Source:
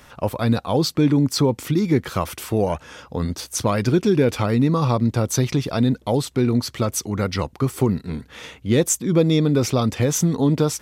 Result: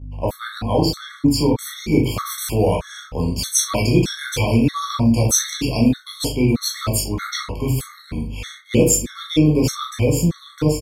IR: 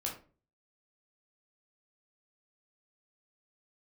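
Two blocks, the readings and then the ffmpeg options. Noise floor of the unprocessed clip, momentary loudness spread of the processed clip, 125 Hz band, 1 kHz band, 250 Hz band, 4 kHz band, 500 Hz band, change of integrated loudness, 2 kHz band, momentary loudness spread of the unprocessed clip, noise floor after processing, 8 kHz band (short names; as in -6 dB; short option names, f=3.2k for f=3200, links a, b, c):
-50 dBFS, 10 LU, +0.5 dB, 0.0 dB, +0.5 dB, +4.5 dB, -0.5 dB, +1.0 dB, +2.5 dB, 9 LU, -44 dBFS, +5.5 dB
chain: -filter_complex "[0:a]agate=range=-34dB:threshold=-43dB:ratio=16:detection=peak,highshelf=f=9k:g=3,acrossover=split=110|2200[a][b][c];[c]dynaudnorm=f=250:g=13:m=11.5dB[d];[a][b][d]amix=inputs=3:normalize=0,aeval=exprs='val(0)+0.02*(sin(2*PI*50*n/s)+sin(2*PI*2*50*n/s)/2+sin(2*PI*3*50*n/s)/3+sin(2*PI*4*50*n/s)/4+sin(2*PI*5*50*n/s)/5)':c=same,asplit=2[e][f];[f]adelay=39,volume=-9dB[g];[e][g]amix=inputs=2:normalize=0[h];[1:a]atrim=start_sample=2205[i];[h][i]afir=irnorm=-1:irlink=0,afftfilt=real='re*gt(sin(2*PI*1.6*pts/sr)*(1-2*mod(floor(b*sr/1024/1100),2)),0)':imag='im*gt(sin(2*PI*1.6*pts/sr)*(1-2*mod(floor(b*sr/1024/1100),2)),0)':win_size=1024:overlap=0.75"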